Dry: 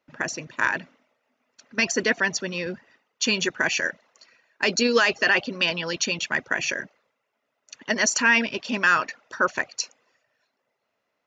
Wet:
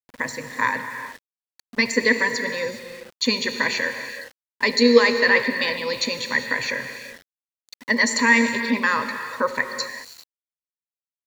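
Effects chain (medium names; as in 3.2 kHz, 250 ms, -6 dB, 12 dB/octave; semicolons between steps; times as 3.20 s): rippled EQ curve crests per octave 0.99, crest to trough 16 dB; gated-style reverb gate 440 ms flat, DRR 6.5 dB; small samples zeroed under -39.5 dBFS; trim -1 dB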